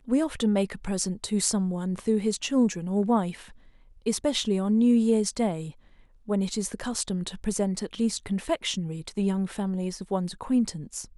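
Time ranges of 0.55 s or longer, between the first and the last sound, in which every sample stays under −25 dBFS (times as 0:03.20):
0:03.30–0:04.07
0:05.61–0:06.30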